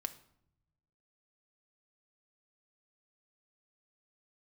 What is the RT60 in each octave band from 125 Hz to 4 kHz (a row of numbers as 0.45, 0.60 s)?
1.6, 1.2, 0.80, 0.65, 0.55, 0.50 s